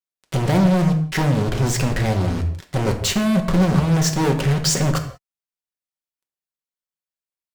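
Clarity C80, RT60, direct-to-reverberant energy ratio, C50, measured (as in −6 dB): 12.0 dB, non-exponential decay, 4.0 dB, 10.0 dB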